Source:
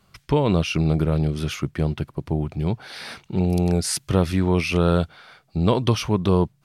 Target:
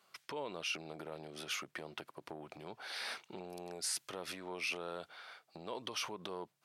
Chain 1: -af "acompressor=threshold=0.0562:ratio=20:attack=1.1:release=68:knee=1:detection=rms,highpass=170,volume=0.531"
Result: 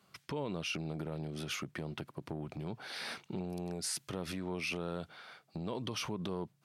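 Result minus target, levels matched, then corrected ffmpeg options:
125 Hz band +13.0 dB
-af "acompressor=threshold=0.0562:ratio=20:attack=1.1:release=68:knee=1:detection=rms,highpass=480,volume=0.531"

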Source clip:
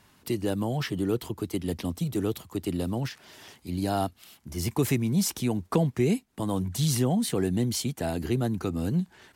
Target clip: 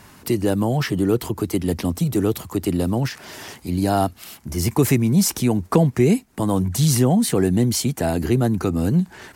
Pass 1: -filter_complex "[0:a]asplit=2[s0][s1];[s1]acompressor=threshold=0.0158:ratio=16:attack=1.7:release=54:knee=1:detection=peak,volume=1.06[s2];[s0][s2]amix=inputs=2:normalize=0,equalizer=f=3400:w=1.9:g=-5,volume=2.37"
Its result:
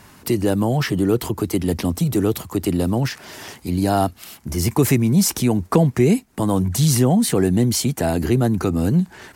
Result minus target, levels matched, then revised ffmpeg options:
compression: peak gain reduction -8 dB
-filter_complex "[0:a]asplit=2[s0][s1];[s1]acompressor=threshold=0.00596:ratio=16:attack=1.7:release=54:knee=1:detection=peak,volume=1.06[s2];[s0][s2]amix=inputs=2:normalize=0,equalizer=f=3400:w=1.9:g=-5,volume=2.37"

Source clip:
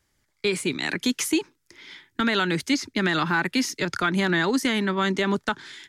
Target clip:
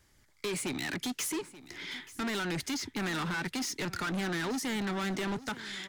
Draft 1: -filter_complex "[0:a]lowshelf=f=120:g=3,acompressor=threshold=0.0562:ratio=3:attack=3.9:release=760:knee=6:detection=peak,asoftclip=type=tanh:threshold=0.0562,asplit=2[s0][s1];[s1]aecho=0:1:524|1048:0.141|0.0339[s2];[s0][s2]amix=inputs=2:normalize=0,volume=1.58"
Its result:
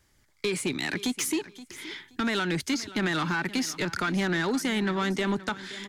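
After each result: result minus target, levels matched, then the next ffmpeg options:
echo 358 ms early; saturation: distortion -9 dB
-filter_complex "[0:a]lowshelf=f=120:g=3,acompressor=threshold=0.0562:ratio=3:attack=3.9:release=760:knee=6:detection=peak,asoftclip=type=tanh:threshold=0.0562,asplit=2[s0][s1];[s1]aecho=0:1:882|1764:0.141|0.0339[s2];[s0][s2]amix=inputs=2:normalize=0,volume=1.58"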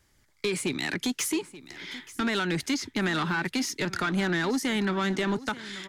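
saturation: distortion -9 dB
-filter_complex "[0:a]lowshelf=f=120:g=3,acompressor=threshold=0.0562:ratio=3:attack=3.9:release=760:knee=6:detection=peak,asoftclip=type=tanh:threshold=0.0178,asplit=2[s0][s1];[s1]aecho=0:1:882|1764:0.141|0.0339[s2];[s0][s2]amix=inputs=2:normalize=0,volume=1.58"

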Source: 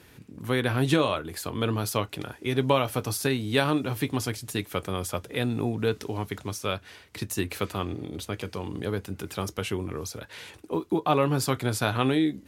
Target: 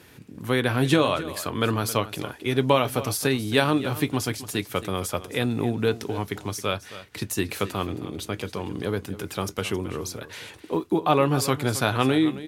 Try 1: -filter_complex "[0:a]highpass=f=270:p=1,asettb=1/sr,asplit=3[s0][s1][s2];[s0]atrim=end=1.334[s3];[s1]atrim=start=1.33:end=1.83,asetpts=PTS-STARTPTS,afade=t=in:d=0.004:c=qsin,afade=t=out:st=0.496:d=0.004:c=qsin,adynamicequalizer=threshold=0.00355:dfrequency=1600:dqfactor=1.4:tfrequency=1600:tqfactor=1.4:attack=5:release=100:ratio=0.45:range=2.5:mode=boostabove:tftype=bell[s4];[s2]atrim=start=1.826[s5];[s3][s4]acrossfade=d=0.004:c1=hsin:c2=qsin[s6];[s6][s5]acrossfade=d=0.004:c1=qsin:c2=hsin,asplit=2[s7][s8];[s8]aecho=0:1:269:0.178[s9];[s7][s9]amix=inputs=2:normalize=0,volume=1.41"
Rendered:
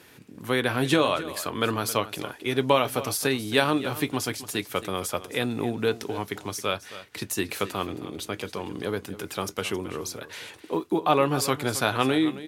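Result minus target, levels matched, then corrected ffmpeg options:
125 Hz band -4.5 dB
-filter_complex "[0:a]highpass=f=79:p=1,asettb=1/sr,asplit=3[s0][s1][s2];[s0]atrim=end=1.334[s3];[s1]atrim=start=1.33:end=1.83,asetpts=PTS-STARTPTS,afade=t=in:d=0.004:c=qsin,afade=t=out:st=0.496:d=0.004:c=qsin,adynamicequalizer=threshold=0.00355:dfrequency=1600:dqfactor=1.4:tfrequency=1600:tqfactor=1.4:attack=5:release=100:ratio=0.45:range=2.5:mode=boostabove:tftype=bell[s4];[s2]atrim=start=1.826[s5];[s3][s4]acrossfade=d=0.004:c1=hsin:c2=qsin[s6];[s6][s5]acrossfade=d=0.004:c1=qsin:c2=hsin,asplit=2[s7][s8];[s8]aecho=0:1:269:0.178[s9];[s7][s9]amix=inputs=2:normalize=0,volume=1.41"

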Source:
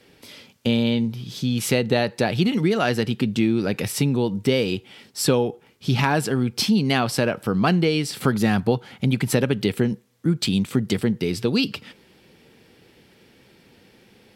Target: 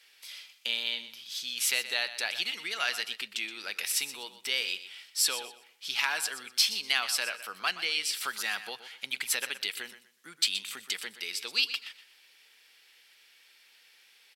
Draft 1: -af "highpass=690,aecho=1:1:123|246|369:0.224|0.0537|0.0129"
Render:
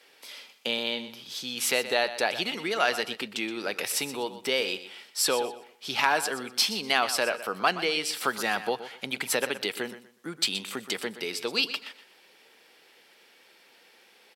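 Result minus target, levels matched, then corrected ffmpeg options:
500 Hz band +14.0 dB
-af "highpass=1900,aecho=1:1:123|246|369:0.224|0.0537|0.0129"

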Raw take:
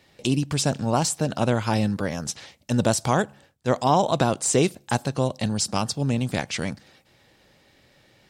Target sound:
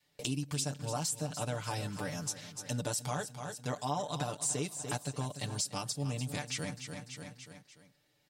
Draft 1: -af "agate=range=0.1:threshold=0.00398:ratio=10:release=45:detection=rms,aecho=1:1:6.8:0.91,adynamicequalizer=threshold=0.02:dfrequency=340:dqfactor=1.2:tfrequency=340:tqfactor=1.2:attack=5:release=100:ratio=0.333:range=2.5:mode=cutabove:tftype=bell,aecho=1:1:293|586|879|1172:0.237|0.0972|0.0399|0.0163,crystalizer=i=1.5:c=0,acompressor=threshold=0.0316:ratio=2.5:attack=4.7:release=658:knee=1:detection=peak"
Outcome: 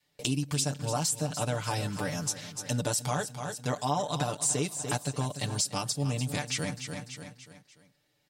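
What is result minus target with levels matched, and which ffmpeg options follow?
compression: peak gain reduction -5.5 dB
-af "agate=range=0.1:threshold=0.00398:ratio=10:release=45:detection=rms,aecho=1:1:6.8:0.91,adynamicequalizer=threshold=0.02:dfrequency=340:dqfactor=1.2:tfrequency=340:tqfactor=1.2:attack=5:release=100:ratio=0.333:range=2.5:mode=cutabove:tftype=bell,aecho=1:1:293|586|879|1172:0.237|0.0972|0.0399|0.0163,crystalizer=i=1.5:c=0,acompressor=threshold=0.0112:ratio=2.5:attack=4.7:release=658:knee=1:detection=peak"

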